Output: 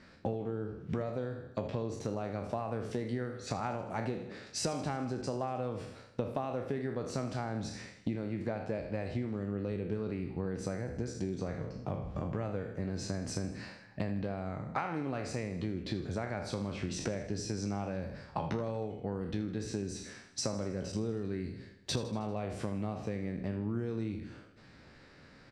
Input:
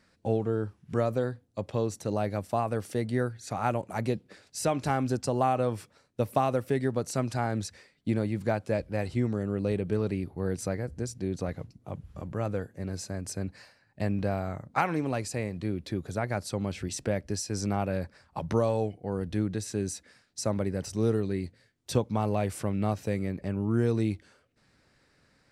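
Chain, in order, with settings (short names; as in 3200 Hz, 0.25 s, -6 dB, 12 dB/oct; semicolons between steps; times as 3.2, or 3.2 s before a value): spectral trails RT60 0.48 s; LPF 4900 Hz 12 dB/oct; bell 230 Hz +2.5 dB 1.6 oct; compressor 8:1, threshold -39 dBFS, peak gain reduction 21 dB; feedback echo 79 ms, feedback 59%, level -14.5 dB; gain +6.5 dB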